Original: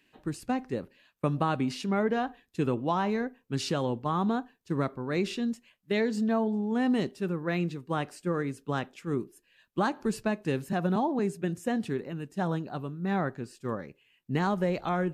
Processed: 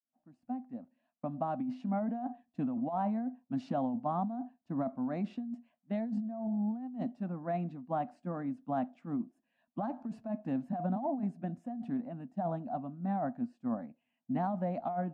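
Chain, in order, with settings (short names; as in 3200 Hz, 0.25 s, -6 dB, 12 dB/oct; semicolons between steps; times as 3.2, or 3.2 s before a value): opening faded in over 2.28 s; double band-pass 410 Hz, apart 1.5 oct; negative-ratio compressor -38 dBFS, ratio -1; gain +4.5 dB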